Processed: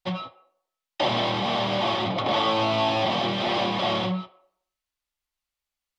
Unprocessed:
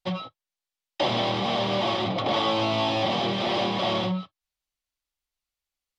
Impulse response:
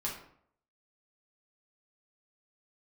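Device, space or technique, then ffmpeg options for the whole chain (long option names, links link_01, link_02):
filtered reverb send: -filter_complex "[0:a]asplit=2[link_01][link_02];[link_02]highpass=frequency=400:width=0.5412,highpass=frequency=400:width=1.3066,lowpass=3400[link_03];[1:a]atrim=start_sample=2205[link_04];[link_03][link_04]afir=irnorm=-1:irlink=0,volume=-9.5dB[link_05];[link_01][link_05]amix=inputs=2:normalize=0"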